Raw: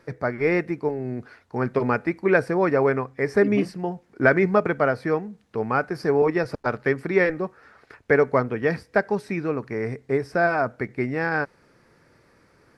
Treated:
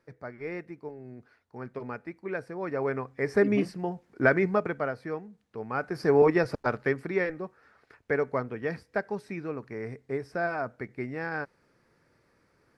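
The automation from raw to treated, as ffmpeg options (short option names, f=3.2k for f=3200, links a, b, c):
-af "volume=7dB,afade=t=in:st=2.56:d=0.78:silence=0.281838,afade=t=out:st=4.22:d=0.74:silence=0.446684,afade=t=in:st=5.69:d=0.52:silence=0.281838,afade=t=out:st=6.21:d=1.05:silence=0.354813"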